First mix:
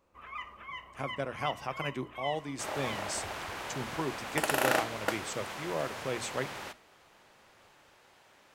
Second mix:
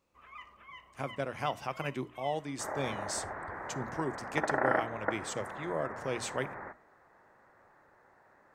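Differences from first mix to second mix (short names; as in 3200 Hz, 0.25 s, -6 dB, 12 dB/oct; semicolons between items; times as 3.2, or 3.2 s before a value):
first sound -7.5 dB; second sound: add elliptic low-pass 1900 Hz, stop band 40 dB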